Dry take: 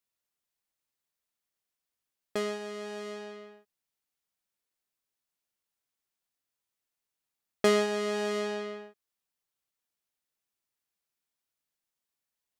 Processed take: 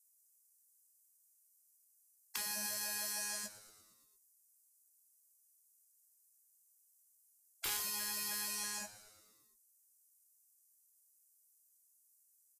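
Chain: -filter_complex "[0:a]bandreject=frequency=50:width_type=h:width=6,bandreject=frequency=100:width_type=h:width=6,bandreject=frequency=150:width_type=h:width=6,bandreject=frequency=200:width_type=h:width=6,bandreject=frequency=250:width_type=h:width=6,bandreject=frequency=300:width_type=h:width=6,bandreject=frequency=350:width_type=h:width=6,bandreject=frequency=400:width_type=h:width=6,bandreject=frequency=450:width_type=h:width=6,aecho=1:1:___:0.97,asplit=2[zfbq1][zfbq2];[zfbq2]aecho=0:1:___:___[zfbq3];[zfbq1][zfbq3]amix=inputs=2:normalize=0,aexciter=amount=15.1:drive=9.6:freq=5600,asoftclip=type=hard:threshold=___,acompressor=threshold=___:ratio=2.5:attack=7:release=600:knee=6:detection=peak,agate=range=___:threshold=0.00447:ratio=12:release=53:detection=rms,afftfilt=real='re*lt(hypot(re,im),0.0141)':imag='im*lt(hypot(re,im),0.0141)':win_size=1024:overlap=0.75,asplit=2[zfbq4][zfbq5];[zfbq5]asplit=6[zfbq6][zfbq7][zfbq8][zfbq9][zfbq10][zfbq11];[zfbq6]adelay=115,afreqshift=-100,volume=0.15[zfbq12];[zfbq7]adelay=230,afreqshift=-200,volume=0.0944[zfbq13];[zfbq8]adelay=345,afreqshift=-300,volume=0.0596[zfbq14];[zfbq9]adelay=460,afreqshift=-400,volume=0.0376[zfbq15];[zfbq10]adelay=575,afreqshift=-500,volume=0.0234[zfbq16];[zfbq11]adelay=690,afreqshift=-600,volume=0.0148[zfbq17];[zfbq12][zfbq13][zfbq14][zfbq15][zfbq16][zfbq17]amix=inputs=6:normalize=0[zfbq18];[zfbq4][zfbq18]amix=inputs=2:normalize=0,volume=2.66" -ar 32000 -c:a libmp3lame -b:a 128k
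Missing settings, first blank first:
1.2, 156, 0.178, 0.398, 0.0112, 0.0631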